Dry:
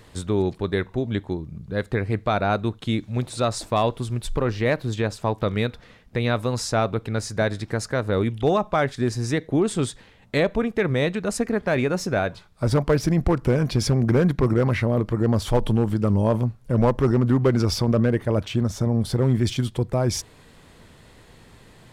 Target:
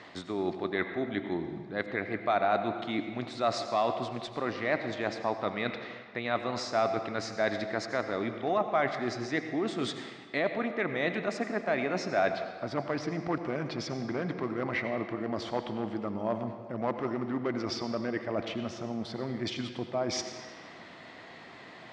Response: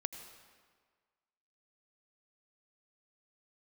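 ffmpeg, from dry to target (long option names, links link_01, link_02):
-filter_complex "[0:a]areverse,acompressor=threshold=-28dB:ratio=10,areverse,highpass=240,equalizer=frequency=300:width_type=q:width=4:gain=3,equalizer=frequency=470:width_type=q:width=4:gain=-5,equalizer=frequency=690:width_type=q:width=4:gain=8,equalizer=frequency=1200:width_type=q:width=4:gain=4,equalizer=frequency=2000:width_type=q:width=4:gain=7,lowpass=frequency=5400:width=0.5412,lowpass=frequency=5400:width=1.3066[link_01];[1:a]atrim=start_sample=2205[link_02];[link_01][link_02]afir=irnorm=-1:irlink=0,volume=2.5dB"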